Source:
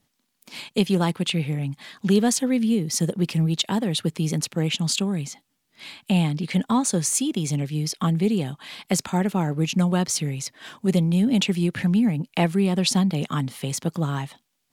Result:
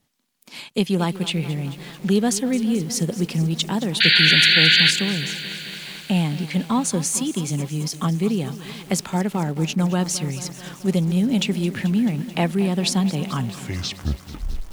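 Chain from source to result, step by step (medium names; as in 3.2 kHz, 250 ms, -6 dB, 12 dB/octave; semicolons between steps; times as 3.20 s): tape stop on the ending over 1.43 s; painted sound noise, 4.00–4.91 s, 1.4–4.7 kHz -15 dBFS; bit-crushed delay 218 ms, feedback 80%, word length 6-bit, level -14.5 dB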